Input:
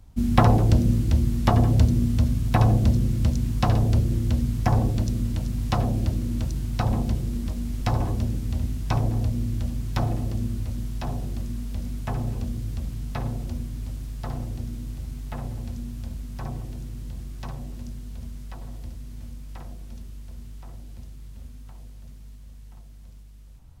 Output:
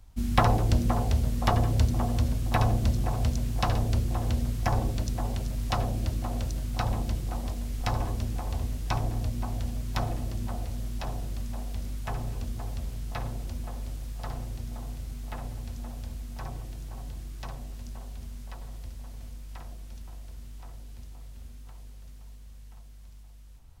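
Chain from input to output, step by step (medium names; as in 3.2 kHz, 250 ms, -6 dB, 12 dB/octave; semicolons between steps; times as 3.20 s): peaking EQ 190 Hz -9 dB 2.9 oct; band-passed feedback delay 520 ms, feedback 58%, band-pass 490 Hz, level -6 dB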